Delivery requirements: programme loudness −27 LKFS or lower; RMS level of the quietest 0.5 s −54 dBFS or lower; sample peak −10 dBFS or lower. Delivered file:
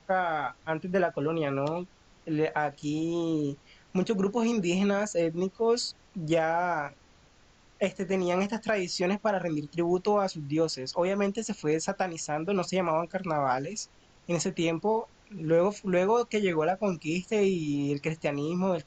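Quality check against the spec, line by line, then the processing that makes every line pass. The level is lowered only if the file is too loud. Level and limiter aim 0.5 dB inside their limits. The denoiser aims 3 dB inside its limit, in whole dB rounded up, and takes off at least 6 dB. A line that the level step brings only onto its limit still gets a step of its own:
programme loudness −29.0 LKFS: in spec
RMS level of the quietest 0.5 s −59 dBFS: in spec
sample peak −15.0 dBFS: in spec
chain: no processing needed

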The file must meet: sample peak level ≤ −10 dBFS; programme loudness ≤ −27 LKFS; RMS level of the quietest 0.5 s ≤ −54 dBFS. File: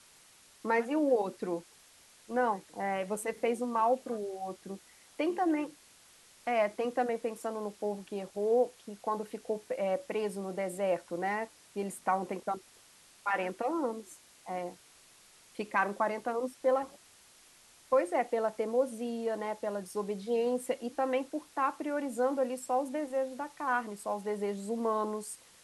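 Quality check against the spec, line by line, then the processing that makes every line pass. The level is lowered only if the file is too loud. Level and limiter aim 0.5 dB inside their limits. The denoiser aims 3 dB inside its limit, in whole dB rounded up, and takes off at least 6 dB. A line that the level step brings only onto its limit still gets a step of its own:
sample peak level −15.0 dBFS: in spec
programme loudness −33.5 LKFS: in spec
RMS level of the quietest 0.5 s −60 dBFS: in spec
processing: no processing needed

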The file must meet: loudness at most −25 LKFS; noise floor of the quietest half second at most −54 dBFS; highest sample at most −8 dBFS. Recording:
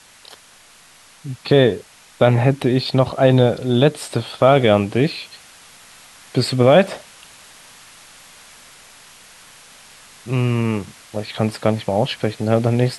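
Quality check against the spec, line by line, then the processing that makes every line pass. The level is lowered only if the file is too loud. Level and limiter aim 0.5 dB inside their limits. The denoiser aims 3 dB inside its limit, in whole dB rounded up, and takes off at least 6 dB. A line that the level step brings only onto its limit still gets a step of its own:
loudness −17.5 LKFS: out of spec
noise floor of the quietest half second −48 dBFS: out of spec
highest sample −1.5 dBFS: out of spec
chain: level −8 dB

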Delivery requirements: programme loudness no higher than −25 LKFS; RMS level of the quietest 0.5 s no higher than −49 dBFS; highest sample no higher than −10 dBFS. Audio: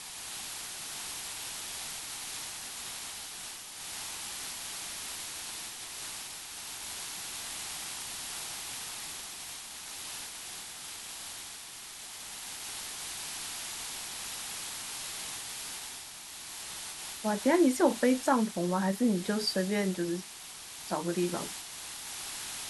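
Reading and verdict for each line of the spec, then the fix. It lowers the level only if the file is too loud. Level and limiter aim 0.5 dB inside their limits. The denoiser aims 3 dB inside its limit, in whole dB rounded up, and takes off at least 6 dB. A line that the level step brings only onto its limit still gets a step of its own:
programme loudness −34.5 LKFS: in spec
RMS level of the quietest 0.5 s −46 dBFS: out of spec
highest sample −13.5 dBFS: in spec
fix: broadband denoise 6 dB, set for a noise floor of −46 dBFS

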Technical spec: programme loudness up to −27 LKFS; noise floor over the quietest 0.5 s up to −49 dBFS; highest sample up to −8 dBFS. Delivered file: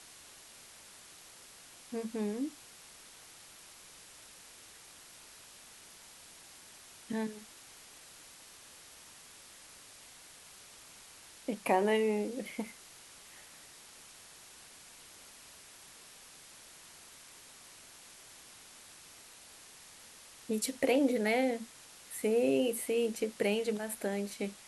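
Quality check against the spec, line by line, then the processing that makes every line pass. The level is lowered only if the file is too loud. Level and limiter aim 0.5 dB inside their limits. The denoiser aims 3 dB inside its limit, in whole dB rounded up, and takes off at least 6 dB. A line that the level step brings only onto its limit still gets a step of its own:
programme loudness −33.0 LKFS: in spec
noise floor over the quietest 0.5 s −55 dBFS: in spec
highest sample −16.5 dBFS: in spec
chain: no processing needed

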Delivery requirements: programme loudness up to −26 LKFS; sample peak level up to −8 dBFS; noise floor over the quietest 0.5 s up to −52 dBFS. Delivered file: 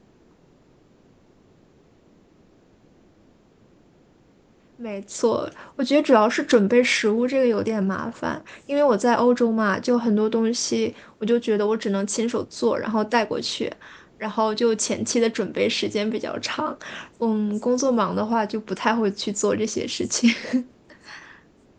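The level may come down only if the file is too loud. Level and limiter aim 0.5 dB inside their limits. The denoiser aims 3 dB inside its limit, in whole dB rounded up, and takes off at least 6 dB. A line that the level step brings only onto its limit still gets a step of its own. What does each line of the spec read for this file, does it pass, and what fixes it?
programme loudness −22.5 LKFS: out of spec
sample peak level −5.0 dBFS: out of spec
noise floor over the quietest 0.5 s −56 dBFS: in spec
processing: level −4 dB

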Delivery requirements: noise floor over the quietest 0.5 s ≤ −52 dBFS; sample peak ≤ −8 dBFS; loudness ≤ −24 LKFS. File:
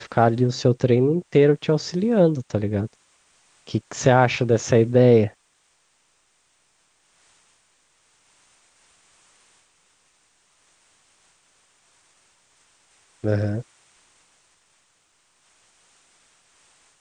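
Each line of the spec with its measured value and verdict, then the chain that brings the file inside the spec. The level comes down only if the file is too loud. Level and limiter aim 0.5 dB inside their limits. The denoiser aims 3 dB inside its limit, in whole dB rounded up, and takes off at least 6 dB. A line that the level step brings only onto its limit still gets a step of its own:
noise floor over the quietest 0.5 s −65 dBFS: in spec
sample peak −2.0 dBFS: out of spec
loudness −20.0 LKFS: out of spec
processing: level −4.5 dB
brickwall limiter −8.5 dBFS

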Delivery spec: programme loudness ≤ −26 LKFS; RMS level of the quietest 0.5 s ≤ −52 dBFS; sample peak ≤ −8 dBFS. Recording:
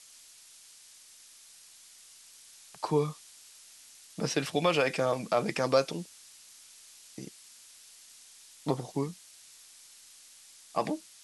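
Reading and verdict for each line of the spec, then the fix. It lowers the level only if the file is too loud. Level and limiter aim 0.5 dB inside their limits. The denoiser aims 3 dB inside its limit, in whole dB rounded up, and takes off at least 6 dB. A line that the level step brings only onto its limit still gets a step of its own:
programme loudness −31.0 LKFS: in spec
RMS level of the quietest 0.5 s −55 dBFS: in spec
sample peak −11.0 dBFS: in spec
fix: no processing needed

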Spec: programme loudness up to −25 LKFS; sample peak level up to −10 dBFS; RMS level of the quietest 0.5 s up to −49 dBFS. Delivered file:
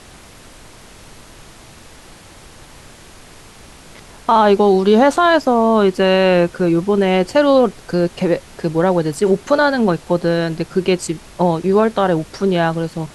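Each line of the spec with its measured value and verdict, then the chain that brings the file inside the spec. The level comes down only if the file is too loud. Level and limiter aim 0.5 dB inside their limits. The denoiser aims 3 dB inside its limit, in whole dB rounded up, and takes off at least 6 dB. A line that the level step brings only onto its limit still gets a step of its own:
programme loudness −15.5 LKFS: out of spec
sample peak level −3.0 dBFS: out of spec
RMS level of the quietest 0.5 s −41 dBFS: out of spec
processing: level −10 dB

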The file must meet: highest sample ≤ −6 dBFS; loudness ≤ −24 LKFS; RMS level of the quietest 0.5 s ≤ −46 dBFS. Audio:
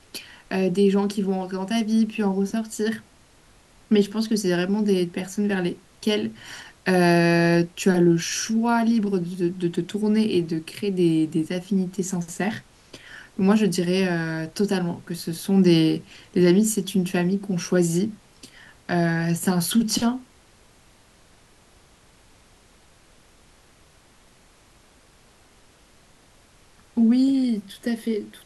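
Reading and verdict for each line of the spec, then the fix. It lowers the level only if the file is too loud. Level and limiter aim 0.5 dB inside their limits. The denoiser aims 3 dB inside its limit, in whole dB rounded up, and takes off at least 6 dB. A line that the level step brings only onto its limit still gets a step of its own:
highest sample −6.5 dBFS: in spec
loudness −22.5 LKFS: out of spec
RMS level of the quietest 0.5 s −55 dBFS: in spec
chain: level −2 dB

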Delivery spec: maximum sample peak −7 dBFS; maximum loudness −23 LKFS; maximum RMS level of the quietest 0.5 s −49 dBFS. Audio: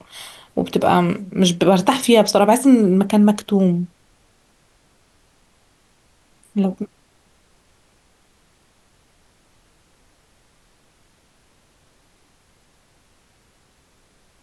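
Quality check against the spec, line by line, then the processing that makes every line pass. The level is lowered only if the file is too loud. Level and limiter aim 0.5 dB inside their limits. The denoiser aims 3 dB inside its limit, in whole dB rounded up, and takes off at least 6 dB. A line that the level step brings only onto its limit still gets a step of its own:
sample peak −2.0 dBFS: out of spec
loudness −16.5 LKFS: out of spec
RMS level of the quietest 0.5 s −58 dBFS: in spec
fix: level −7 dB

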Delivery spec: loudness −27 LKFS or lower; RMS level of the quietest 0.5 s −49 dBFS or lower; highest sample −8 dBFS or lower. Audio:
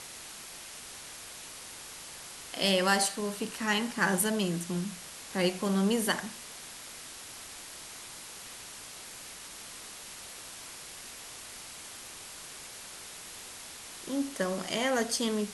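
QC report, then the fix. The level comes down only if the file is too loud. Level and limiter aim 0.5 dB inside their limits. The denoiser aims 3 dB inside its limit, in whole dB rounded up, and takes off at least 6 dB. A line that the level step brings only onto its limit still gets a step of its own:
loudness −34.0 LKFS: in spec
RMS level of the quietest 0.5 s −46 dBFS: out of spec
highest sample −11.0 dBFS: in spec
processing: broadband denoise 6 dB, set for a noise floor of −46 dBFS

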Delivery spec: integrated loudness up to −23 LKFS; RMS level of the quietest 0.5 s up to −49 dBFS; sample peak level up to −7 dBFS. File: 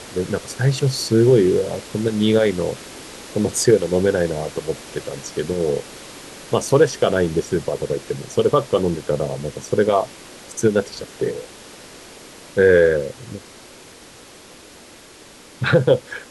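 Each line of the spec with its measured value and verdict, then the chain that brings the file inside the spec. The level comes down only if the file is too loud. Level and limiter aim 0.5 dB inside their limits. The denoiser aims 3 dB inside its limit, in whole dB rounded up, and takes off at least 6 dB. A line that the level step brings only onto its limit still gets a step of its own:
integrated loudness −19.5 LKFS: out of spec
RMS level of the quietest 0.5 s −44 dBFS: out of spec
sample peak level −3.0 dBFS: out of spec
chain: broadband denoise 6 dB, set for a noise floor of −44 dBFS
level −4 dB
brickwall limiter −7.5 dBFS

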